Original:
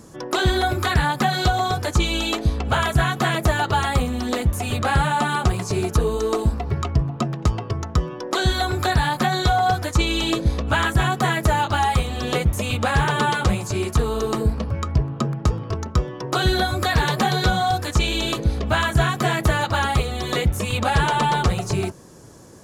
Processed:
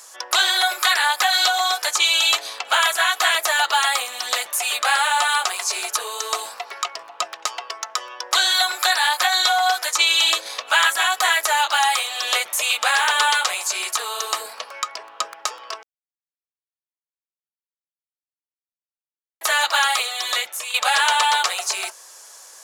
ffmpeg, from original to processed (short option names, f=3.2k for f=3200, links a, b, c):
-filter_complex "[0:a]asplit=4[a][b][c][d];[a]atrim=end=15.83,asetpts=PTS-STARTPTS,afade=t=out:st=15.826:d=0.004:c=hsin[e];[b]atrim=start=15.83:end=19.41,asetpts=PTS-STARTPTS,volume=0[f];[c]atrim=start=19.41:end=20.74,asetpts=PTS-STARTPTS,afade=t=in:d=0.004:c=hsin,afade=t=out:st=0.67:d=0.66:silence=0.316228[g];[d]atrim=start=20.74,asetpts=PTS-STARTPTS,afade=t=in:d=0.004:c=hsin:silence=0.316228[h];[e][f][g][h]concat=n=4:v=0:a=1,highpass=f=630:w=0.5412,highpass=f=630:w=1.3066,tiltshelf=f=1.3k:g=-7,volume=4dB"